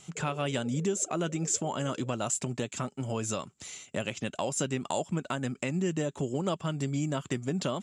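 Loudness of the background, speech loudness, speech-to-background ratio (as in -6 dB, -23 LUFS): -49.5 LUFS, -32.0 LUFS, 17.5 dB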